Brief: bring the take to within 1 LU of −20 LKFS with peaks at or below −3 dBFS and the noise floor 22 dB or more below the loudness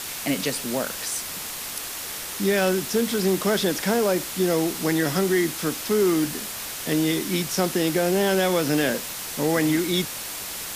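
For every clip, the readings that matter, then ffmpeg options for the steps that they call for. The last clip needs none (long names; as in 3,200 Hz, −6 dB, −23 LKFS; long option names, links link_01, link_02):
background noise floor −33 dBFS; target noise floor −46 dBFS; integrated loudness −23.5 LKFS; sample peak −9.0 dBFS; target loudness −20.0 LKFS
→ -af "afftdn=noise_reduction=13:noise_floor=-33"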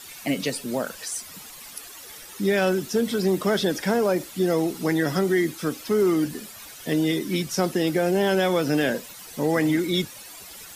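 background noise floor −43 dBFS; target noise floor −46 dBFS
→ -af "afftdn=noise_reduction=6:noise_floor=-43"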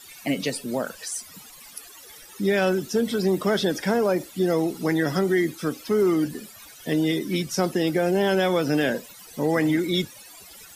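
background noise floor −46 dBFS; integrated loudness −24.0 LKFS; sample peak −10.0 dBFS; target loudness −20.0 LKFS
→ -af "volume=4dB"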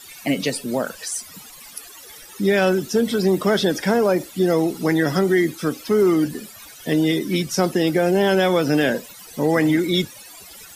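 integrated loudness −20.0 LKFS; sample peak −6.0 dBFS; background noise floor −42 dBFS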